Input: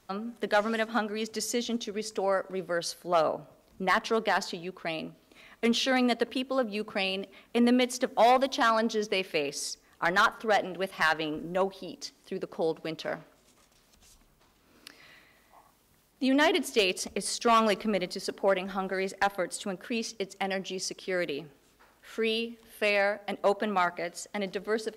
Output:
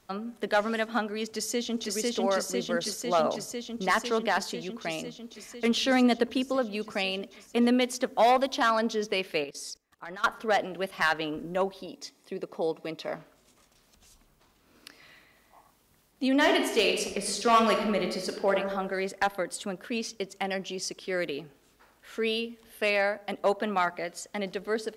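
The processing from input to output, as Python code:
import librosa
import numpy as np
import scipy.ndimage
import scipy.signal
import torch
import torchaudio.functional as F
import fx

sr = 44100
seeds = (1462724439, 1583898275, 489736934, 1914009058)

y = fx.echo_throw(x, sr, start_s=1.27, length_s=0.67, ms=500, feedback_pct=80, wet_db=-0.5)
y = fx.low_shelf(y, sr, hz=360.0, db=6.0, at=(5.77, 6.56))
y = fx.level_steps(y, sr, step_db=20, at=(9.44, 10.24))
y = fx.notch_comb(y, sr, f0_hz=1500.0, at=(11.86, 13.15))
y = fx.reverb_throw(y, sr, start_s=16.33, length_s=2.2, rt60_s=1.1, drr_db=3.5)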